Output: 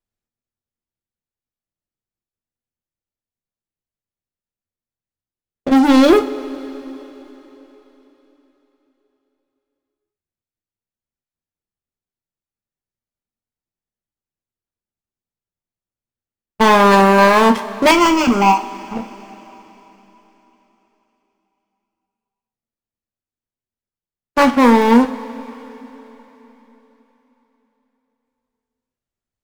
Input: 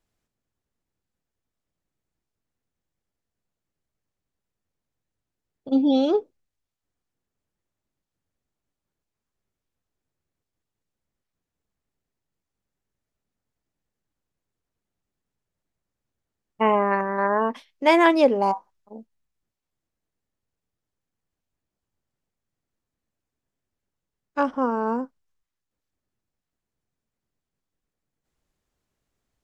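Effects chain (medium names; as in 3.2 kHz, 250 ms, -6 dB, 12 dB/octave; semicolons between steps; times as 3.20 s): waveshaping leveller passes 5; 17.91–18.97 s: static phaser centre 2.6 kHz, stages 8; two-slope reverb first 0.33 s, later 3.9 s, from -18 dB, DRR 6 dB; trim -1 dB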